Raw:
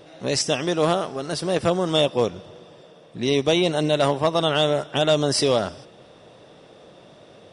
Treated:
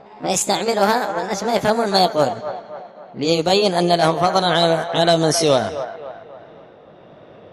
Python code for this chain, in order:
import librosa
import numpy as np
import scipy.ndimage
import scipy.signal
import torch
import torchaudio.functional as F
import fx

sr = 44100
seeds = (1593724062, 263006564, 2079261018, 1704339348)

y = fx.pitch_glide(x, sr, semitones=5.0, runs='ending unshifted')
y = fx.echo_wet_bandpass(y, sr, ms=268, feedback_pct=46, hz=1000.0, wet_db=-9)
y = fx.env_lowpass(y, sr, base_hz=2000.0, full_db=-18.5)
y = y * librosa.db_to_amplitude(5.0)